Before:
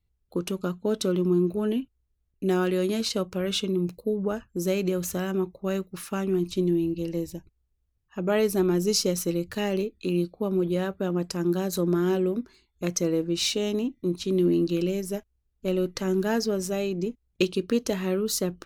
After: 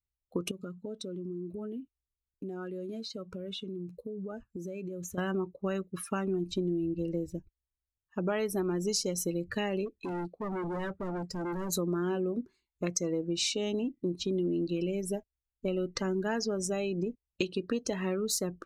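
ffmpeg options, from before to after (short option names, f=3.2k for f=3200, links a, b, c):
-filter_complex "[0:a]asettb=1/sr,asplit=3[a][b][c];[a]atrim=end=0.514[d];[b]atrim=start=0.51:end=5.18,asetpts=PTS-STARTPTS,afade=t=in:d=0.004:c=qsin,afade=t=out:st=4.666:d=0.004:c=qsin,acompressor=threshold=-36dB:ratio=8:attack=3.2:release=140:knee=1:detection=peak[e];[c]atrim=start=5.176[f];[d][e]acrossfade=d=0.004:c1=hsin:c2=qsin[g];[g][f]acrossfade=d=0.004:c1=qsin:c2=hsin,asplit=3[h][i][j];[h]afade=t=out:st=9.85:d=0.02[k];[i]asoftclip=type=hard:threshold=-33.5dB,afade=t=in:st=9.85:d=0.02,afade=t=out:st=11.69:d=0.02[l];[j]afade=t=in:st=11.69:d=0.02[m];[k][l][m]amix=inputs=3:normalize=0,afftdn=nr=19:nf=-39,equalizer=f=1k:t=o:w=1:g=4,equalizer=f=2k:t=o:w=1:g=4,equalizer=f=8k:t=o:w=1:g=6,acompressor=threshold=-29dB:ratio=4"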